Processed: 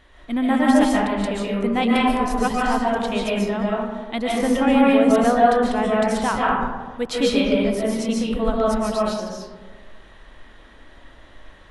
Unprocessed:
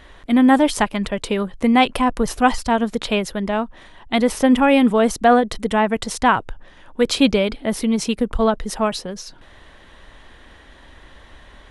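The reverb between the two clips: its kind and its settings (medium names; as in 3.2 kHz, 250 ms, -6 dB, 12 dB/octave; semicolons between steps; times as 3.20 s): algorithmic reverb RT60 1.4 s, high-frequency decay 0.35×, pre-delay 100 ms, DRR -5.5 dB; trim -8.5 dB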